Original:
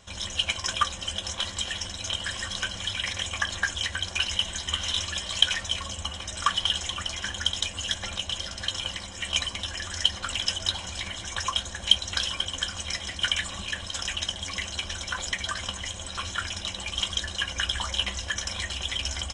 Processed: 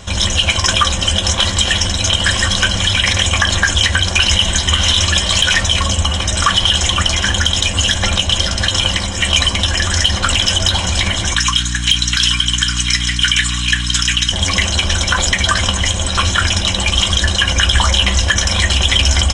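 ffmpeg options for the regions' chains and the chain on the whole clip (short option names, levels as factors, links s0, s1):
-filter_complex "[0:a]asettb=1/sr,asplit=3[s0][s1][s2];[s0]atrim=end=11.344[s3];[s1]atrim=start=11.34:end=14.32,asetpts=PTS-STARTPTS,afade=t=in:d=0.004:c=qsin,afade=t=out:st=2.976:d=0.004:c=qsin,highpass=f=1300:w=0.5412,highpass=f=1300:w=1.3066,aeval=exprs='val(0)+0.00794*(sin(2*PI*60*n/s)+sin(2*PI*2*60*n/s)/2+sin(2*PI*3*60*n/s)/3+sin(2*PI*4*60*n/s)/4+sin(2*PI*5*60*n/s)/5)':c=same[s4];[s2]atrim=start=14.316[s5];[s3][s4]acrossfade=d=0.004:c1=hsin:c2=qsin[s6];[s6][s5]acrossfade=d=0.004:c1=qsin:c2=hsin,lowshelf=f=280:g=6,acontrast=72,alimiter=level_in=3.76:limit=0.891:release=50:level=0:latency=1,volume=0.891"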